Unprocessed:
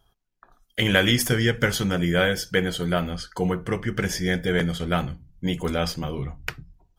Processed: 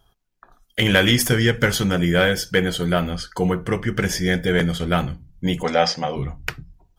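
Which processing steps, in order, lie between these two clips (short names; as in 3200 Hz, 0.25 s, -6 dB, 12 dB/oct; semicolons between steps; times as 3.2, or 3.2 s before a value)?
soft clip -6.5 dBFS, distortion -27 dB; 5.63–6.16 speaker cabinet 200–7100 Hz, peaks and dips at 350 Hz -9 dB, 530 Hz +6 dB, 770 Hz +10 dB, 1900 Hz +9 dB, 5400 Hz +8 dB; gain +4 dB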